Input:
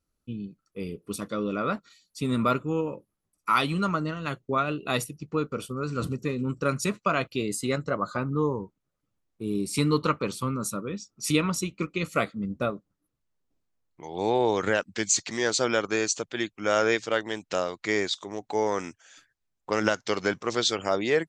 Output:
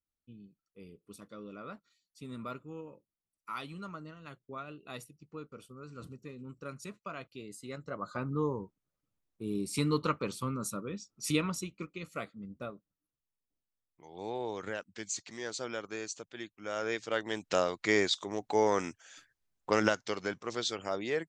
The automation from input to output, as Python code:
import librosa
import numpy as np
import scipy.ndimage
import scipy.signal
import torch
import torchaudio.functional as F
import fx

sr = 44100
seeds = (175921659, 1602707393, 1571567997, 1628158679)

y = fx.gain(x, sr, db=fx.line((7.62, -17.0), (8.27, -6.0), (11.38, -6.0), (12.01, -13.5), (16.72, -13.5), (17.47, -1.0), (19.75, -1.0), (20.18, -9.0)))